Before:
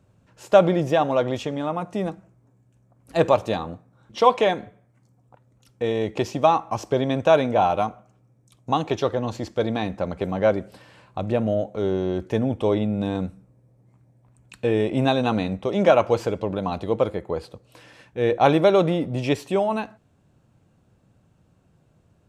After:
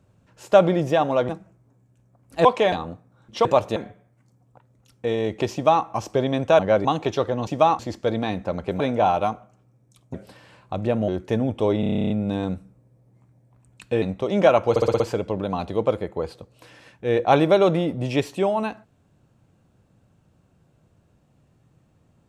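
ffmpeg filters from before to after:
-filter_complex "[0:a]asplit=29[a][b][c][d][e][f][g][h][i][j][k][l][m][n][o][p][q][r][s][t][u][v][w][x][y][z][aa][ab][ac];[a]atrim=end=1.292[ad];[b]atrim=start=2.058:end=3.222[ae];[c]atrim=start=4.258:end=4.532[af];[d]atrim=start=3.528:end=4.262[ag];[e]atrim=start=3.218:end=3.532[ah];[f]atrim=start=4.528:end=7.362[ai];[g]atrim=start=10.328:end=10.592[aj];[h]atrim=start=8.698:end=9.322[ak];[i]atrim=start=6.298:end=6.622[al];[j]atrim=start=9.318:end=10.332[am];[k]atrim=start=7.358:end=8.702[an];[l]atrim=start=10.588:end=11.532[ao];[m]atrim=start=12.098:end=12.852[ap];[n]atrim=start=12.818:end=12.852[aq];[o]atrim=start=12.818:end=12.852[ar];[p]atrim=start=12.818:end=12.852[as];[q]atrim=start=12.818:end=12.852[at];[r]atrim=start=12.818:end=12.852[au];[s]atrim=start=12.818:end=12.852[av];[t]atrim=start=12.818:end=12.852[aw];[u]atrim=start=12.818:end=12.852[ax];[v]atrim=start=12.818:end=12.852[ay];[w]atrim=start=12.818:end=14.742[az];[x]atrim=start=15.448:end=16.192[ba];[y]atrim=start=16.128:end=16.192[bb];[z]atrim=start=16.128:end=16.192[bc];[aa]atrim=start=16.128:end=16.192[bd];[ab]atrim=start=16.128:end=16.192[be];[ac]atrim=start=16.128[bf];[ad][ae]acrossfade=d=0.004:c1=hsin:c2=hsin[bg];[bg][af]acrossfade=d=0.004:c1=hsin:c2=hsin[bh];[bh][ag]acrossfade=d=0.004:c1=hsin:c2=hsin[bi];[bi][ah]acrossfade=d=0.004:c1=hsin:c2=hsin[bj];[bj][ai]acrossfade=d=0.004:c1=hsin:c2=hsin[bk];[bk][aj]acrossfade=d=0.004:c1=hsin:c2=hsin[bl];[bl][ak]acrossfade=d=0.004:c1=hsin:c2=hsin[bm];[bm][al]acrossfade=d=0.004:c1=hsin:c2=hsin[bn];[bn][am]acrossfade=d=0.004:c1=hsin:c2=hsin[bo];[bo][an]acrossfade=d=0.004:c1=hsin:c2=hsin[bp];[bp][ao]acrossfade=d=0.004:c1=hsin:c2=hsin[bq];[bq][ap]acrossfade=d=0.004:c1=hsin:c2=hsin[br];[br][aq]acrossfade=d=0.004:c1=hsin:c2=hsin[bs];[bs][ar]acrossfade=d=0.004:c1=hsin:c2=hsin[bt];[bt][as]acrossfade=d=0.004:c1=hsin:c2=hsin[bu];[bu][at]acrossfade=d=0.004:c1=hsin:c2=hsin[bv];[bv][au]acrossfade=d=0.004:c1=hsin:c2=hsin[bw];[bw][av]acrossfade=d=0.004:c1=hsin:c2=hsin[bx];[bx][aw]acrossfade=d=0.004:c1=hsin:c2=hsin[by];[by][ax]acrossfade=d=0.004:c1=hsin:c2=hsin[bz];[bz][ay]acrossfade=d=0.004:c1=hsin:c2=hsin[ca];[ca][az]acrossfade=d=0.004:c1=hsin:c2=hsin[cb];[cb][ba]acrossfade=d=0.004:c1=hsin:c2=hsin[cc];[cc][bb]acrossfade=d=0.004:c1=hsin:c2=hsin[cd];[cd][bc]acrossfade=d=0.004:c1=hsin:c2=hsin[ce];[ce][bd]acrossfade=d=0.004:c1=hsin:c2=hsin[cf];[cf][be]acrossfade=d=0.004:c1=hsin:c2=hsin[cg];[cg][bf]acrossfade=d=0.004:c1=hsin:c2=hsin"

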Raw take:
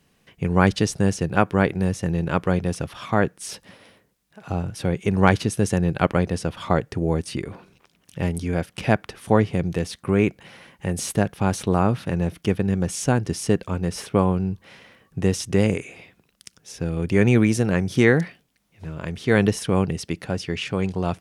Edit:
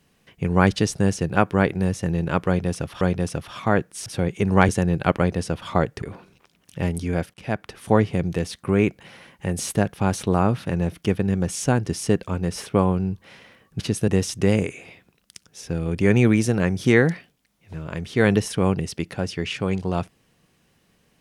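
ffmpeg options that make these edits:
-filter_complex "[0:a]asplit=8[a][b][c][d][e][f][g][h];[a]atrim=end=3.012[i];[b]atrim=start=2.468:end=3.522[j];[c]atrim=start=4.718:end=5.352[k];[d]atrim=start=5.638:end=6.972[l];[e]atrim=start=7.418:end=8.74,asetpts=PTS-STARTPTS,afade=t=out:st=1.318:d=0.004:c=hsin:silence=0.141254[m];[f]atrim=start=8.74:end=15.192,asetpts=PTS-STARTPTS,afade=t=in:d=0.48:silence=0.141254[n];[g]atrim=start=5.348:end=5.642[o];[h]atrim=start=15.188[p];[i][j]acrossfade=d=0.004:c1=hsin:c2=hsin[q];[q][k]acrossfade=d=0.004:c1=hsin:c2=hsin[r];[r][l]acrossfade=d=0.004:c1=hsin:c2=hsin[s];[m][n]concat=n=2:v=0:a=1[t];[s][t]acrossfade=d=0.004:c1=hsin:c2=hsin[u];[u][o]acrossfade=d=0.004:c1=hsin:c2=hsin[v];[v][p]acrossfade=d=0.004:c1=hsin:c2=hsin"

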